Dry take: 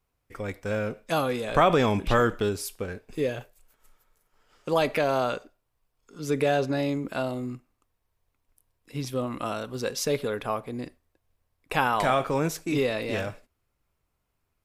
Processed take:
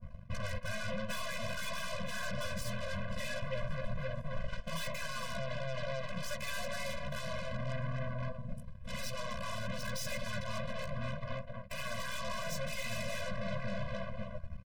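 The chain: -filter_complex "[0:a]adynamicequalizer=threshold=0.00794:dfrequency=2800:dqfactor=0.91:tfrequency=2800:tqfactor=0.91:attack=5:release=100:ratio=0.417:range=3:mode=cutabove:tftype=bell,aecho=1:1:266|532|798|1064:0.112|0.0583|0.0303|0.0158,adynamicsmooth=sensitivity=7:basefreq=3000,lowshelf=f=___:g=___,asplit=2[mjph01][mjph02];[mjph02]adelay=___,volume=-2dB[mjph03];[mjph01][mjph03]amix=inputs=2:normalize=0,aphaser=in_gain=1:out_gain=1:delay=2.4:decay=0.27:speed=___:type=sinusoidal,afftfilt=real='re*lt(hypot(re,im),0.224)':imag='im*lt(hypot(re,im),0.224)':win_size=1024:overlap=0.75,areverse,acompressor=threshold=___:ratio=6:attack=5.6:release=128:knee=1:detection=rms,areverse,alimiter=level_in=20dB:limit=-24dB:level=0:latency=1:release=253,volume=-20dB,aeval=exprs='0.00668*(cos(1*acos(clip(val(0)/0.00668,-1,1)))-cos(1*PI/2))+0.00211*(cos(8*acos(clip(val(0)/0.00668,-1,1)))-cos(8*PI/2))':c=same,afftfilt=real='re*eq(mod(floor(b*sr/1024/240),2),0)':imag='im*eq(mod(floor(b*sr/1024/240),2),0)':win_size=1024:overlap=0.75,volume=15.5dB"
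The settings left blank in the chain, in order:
350, 9.5, 15, 0.74, -44dB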